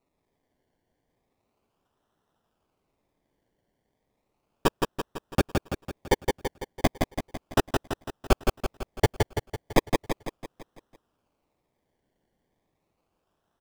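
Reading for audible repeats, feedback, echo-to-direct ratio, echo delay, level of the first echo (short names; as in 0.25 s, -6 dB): 6, 53%, -2.5 dB, 0.167 s, -4.0 dB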